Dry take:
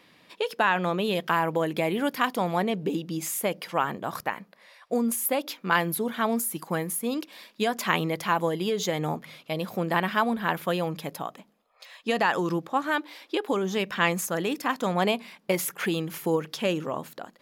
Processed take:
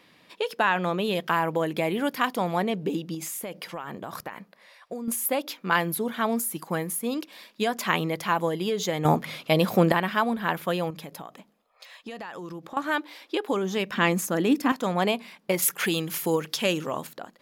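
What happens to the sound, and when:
0:03.14–0:05.08: downward compressor 12 to 1, threshold −30 dBFS
0:09.05–0:09.92: clip gain +9 dB
0:10.90–0:12.77: downward compressor, threshold −35 dBFS
0:13.93–0:14.72: parametric band 260 Hz +11.5 dB
0:15.62–0:17.07: high-shelf EQ 2,400 Hz +8.5 dB

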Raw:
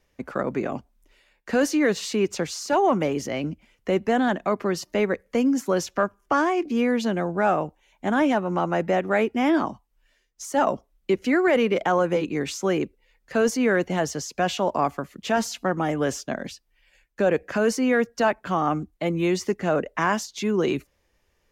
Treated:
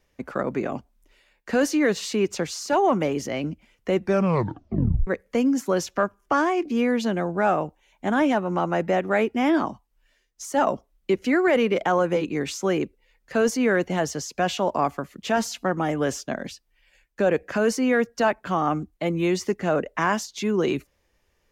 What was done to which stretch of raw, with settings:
0:03.96: tape stop 1.11 s

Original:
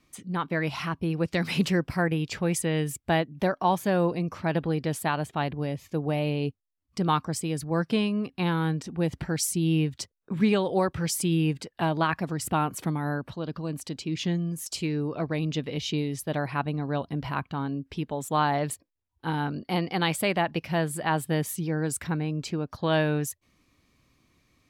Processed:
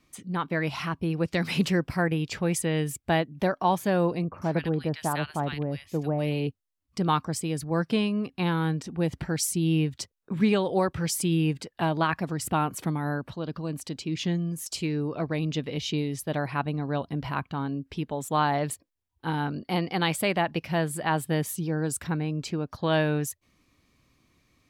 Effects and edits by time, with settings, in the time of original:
0:04.24–0:06.47: multiband delay without the direct sound lows, highs 100 ms, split 1,400 Hz
0:21.51–0:22.06: parametric band 2,100 Hz −7.5 dB 0.35 octaves

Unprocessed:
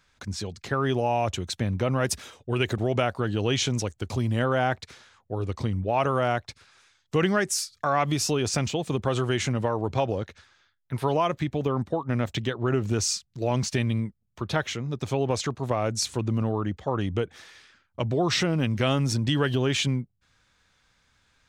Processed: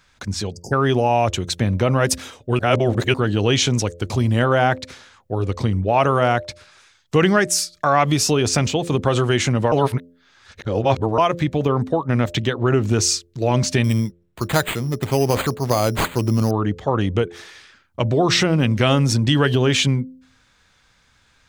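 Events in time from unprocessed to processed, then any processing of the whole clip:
0:00.52–0:00.72: time-frequency box erased 940–4,600 Hz
0:02.59–0:03.14: reverse
0:09.72–0:11.18: reverse
0:13.84–0:16.51: bad sample-rate conversion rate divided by 8×, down none, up hold
whole clip: hum removal 86.2 Hz, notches 7; level +7.5 dB

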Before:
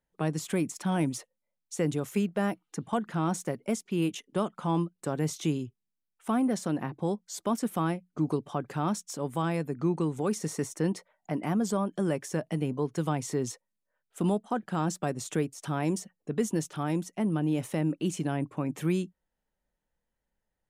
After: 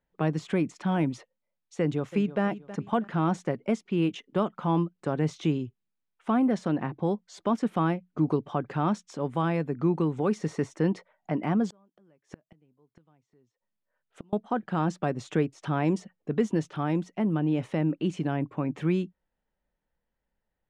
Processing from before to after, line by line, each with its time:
0:01.80–0:02.43: delay throw 320 ms, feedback 30%, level −15 dB
0:11.70–0:14.33: gate with flip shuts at −28 dBFS, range −35 dB
whole clip: low-pass filter 3,300 Hz 12 dB per octave; speech leveller 2 s; level +2.5 dB

